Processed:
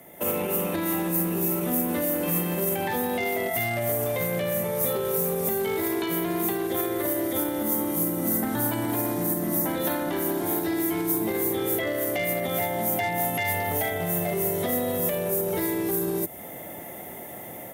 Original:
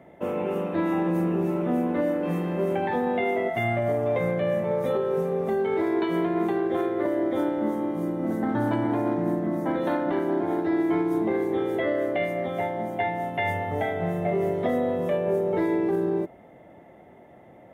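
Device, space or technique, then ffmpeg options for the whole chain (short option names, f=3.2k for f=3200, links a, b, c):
FM broadcast chain: -filter_complex "[0:a]highpass=49,dynaudnorm=f=150:g=3:m=10dB,acrossover=split=130|3600[a][b][c];[a]acompressor=threshold=-35dB:ratio=4[d];[b]acompressor=threshold=-25dB:ratio=4[e];[c]acompressor=threshold=-57dB:ratio=4[f];[d][e][f]amix=inputs=3:normalize=0,aemphasis=mode=production:type=75fm,alimiter=limit=-18.5dB:level=0:latency=1:release=45,asoftclip=type=hard:threshold=-21dB,lowpass=f=15k:w=0.5412,lowpass=f=15k:w=1.3066,aemphasis=mode=production:type=75fm"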